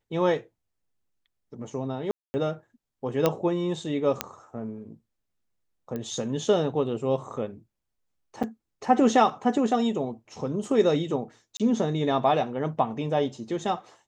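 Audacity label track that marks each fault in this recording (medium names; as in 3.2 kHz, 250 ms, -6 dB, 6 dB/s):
2.110000	2.340000	dropout 230 ms
3.260000	3.260000	pop -8 dBFS
4.210000	4.210000	pop -8 dBFS
5.960000	5.960000	pop -21 dBFS
8.430000	8.440000	dropout 6.4 ms
11.570000	11.600000	dropout 27 ms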